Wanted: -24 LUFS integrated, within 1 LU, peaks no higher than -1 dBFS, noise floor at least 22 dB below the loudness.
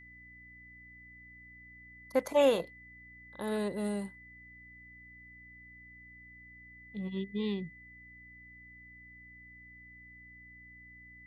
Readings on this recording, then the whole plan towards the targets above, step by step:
hum 60 Hz; highest harmonic 300 Hz; hum level -58 dBFS; steady tone 2 kHz; tone level -52 dBFS; loudness -33.0 LUFS; peak level -15.5 dBFS; loudness target -24.0 LUFS
-> de-hum 60 Hz, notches 5; band-stop 2 kHz, Q 30; trim +9 dB

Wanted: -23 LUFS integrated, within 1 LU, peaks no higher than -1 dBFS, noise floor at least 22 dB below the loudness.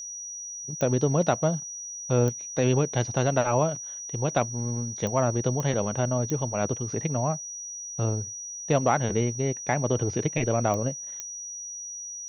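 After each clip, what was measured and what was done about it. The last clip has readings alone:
clicks found 7; steady tone 5.8 kHz; tone level -35 dBFS; loudness -27.0 LUFS; peak level -8.5 dBFS; loudness target -23.0 LUFS
-> de-click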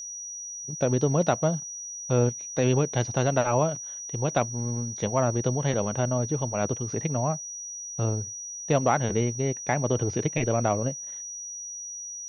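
clicks found 0; steady tone 5.8 kHz; tone level -35 dBFS
-> band-stop 5.8 kHz, Q 30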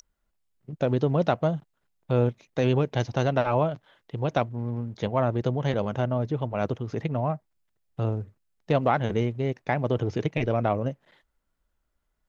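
steady tone not found; loudness -27.0 LUFS; peak level -9.0 dBFS; loudness target -23.0 LUFS
-> trim +4 dB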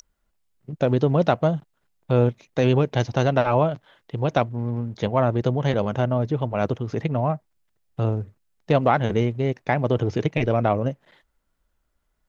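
loudness -23.0 LUFS; peak level -5.0 dBFS; noise floor -72 dBFS

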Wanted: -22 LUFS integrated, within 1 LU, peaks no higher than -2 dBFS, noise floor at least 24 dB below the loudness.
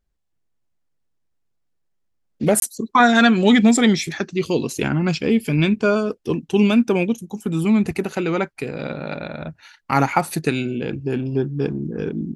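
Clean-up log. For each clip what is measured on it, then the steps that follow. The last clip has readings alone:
dropouts 1; longest dropout 22 ms; loudness -19.5 LUFS; peak level -2.5 dBFS; loudness target -22.0 LUFS
-> interpolate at 2.60 s, 22 ms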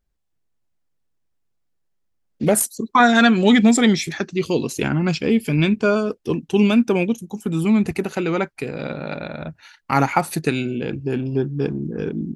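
dropouts 0; loudness -19.5 LUFS; peak level -2.5 dBFS; loudness target -22.0 LUFS
-> trim -2.5 dB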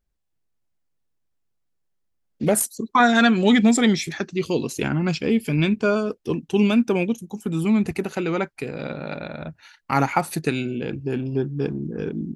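loudness -22.0 LUFS; peak level -5.0 dBFS; noise floor -73 dBFS

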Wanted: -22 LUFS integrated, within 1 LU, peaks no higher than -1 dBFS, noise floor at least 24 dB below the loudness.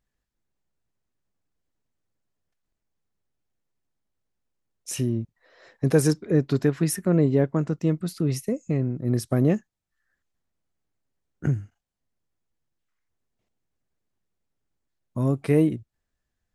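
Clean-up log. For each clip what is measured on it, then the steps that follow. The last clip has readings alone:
loudness -24.5 LUFS; peak level -7.5 dBFS; loudness target -22.0 LUFS
-> trim +2.5 dB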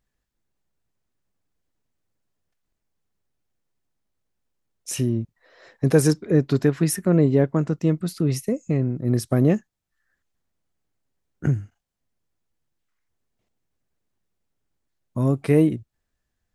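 loudness -22.0 LUFS; peak level -5.0 dBFS; noise floor -80 dBFS

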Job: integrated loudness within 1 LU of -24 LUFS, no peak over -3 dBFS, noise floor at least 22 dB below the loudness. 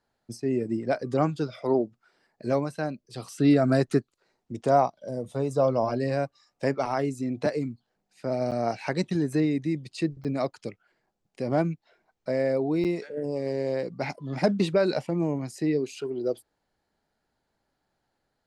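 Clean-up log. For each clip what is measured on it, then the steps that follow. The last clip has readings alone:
dropouts 3; longest dropout 7.9 ms; loudness -27.5 LUFS; peak level -9.5 dBFS; loudness target -24.0 LUFS
-> interpolate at 8.51/10.24/12.84 s, 7.9 ms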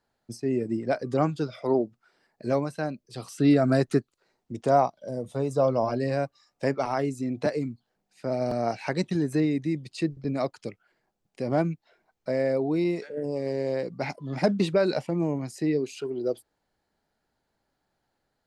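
dropouts 0; loudness -27.5 LUFS; peak level -9.5 dBFS; loudness target -24.0 LUFS
-> trim +3.5 dB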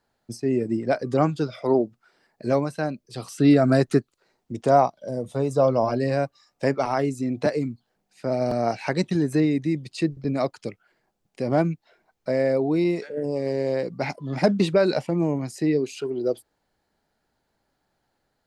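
loudness -24.0 LUFS; peak level -6.0 dBFS; noise floor -75 dBFS

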